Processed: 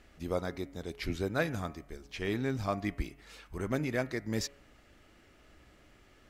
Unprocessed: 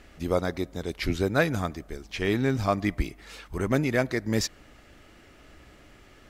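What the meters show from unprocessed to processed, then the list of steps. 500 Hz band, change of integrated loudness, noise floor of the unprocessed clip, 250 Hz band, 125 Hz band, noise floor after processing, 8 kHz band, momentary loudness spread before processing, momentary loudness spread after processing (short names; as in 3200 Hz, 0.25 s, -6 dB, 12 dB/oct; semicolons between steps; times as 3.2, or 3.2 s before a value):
-7.5 dB, -7.5 dB, -54 dBFS, -7.5 dB, -7.5 dB, -61 dBFS, -7.5 dB, 10 LU, 10 LU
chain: de-hum 140.3 Hz, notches 22; gain -7.5 dB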